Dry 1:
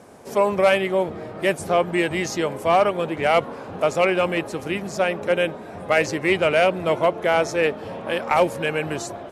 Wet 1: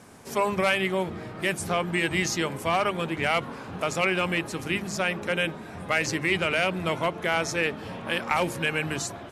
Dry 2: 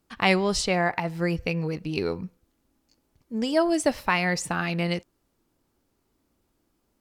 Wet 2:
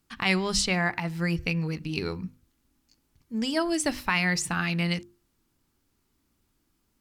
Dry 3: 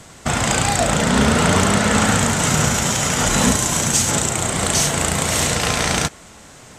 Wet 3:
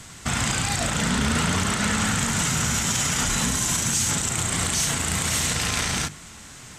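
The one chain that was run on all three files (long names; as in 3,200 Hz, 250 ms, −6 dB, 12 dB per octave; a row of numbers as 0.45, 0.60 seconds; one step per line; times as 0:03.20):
parametric band 560 Hz −10.5 dB 1.5 octaves
brickwall limiter −15 dBFS
mains-hum notches 50/100/150/200/250/300/350 Hz
normalise the peak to −12 dBFS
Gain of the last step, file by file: +2.0, +2.5, +1.5 decibels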